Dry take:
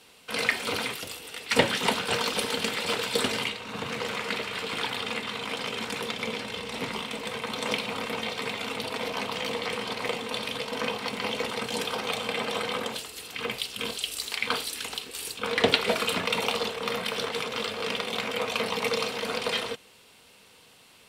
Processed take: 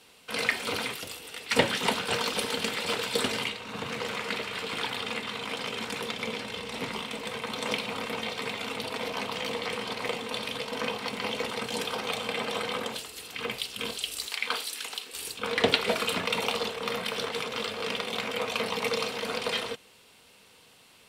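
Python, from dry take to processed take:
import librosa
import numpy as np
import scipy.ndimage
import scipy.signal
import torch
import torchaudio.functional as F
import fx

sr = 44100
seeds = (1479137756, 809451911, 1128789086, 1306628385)

y = fx.highpass(x, sr, hz=570.0, slope=6, at=(14.27, 15.13))
y = F.gain(torch.from_numpy(y), -1.5).numpy()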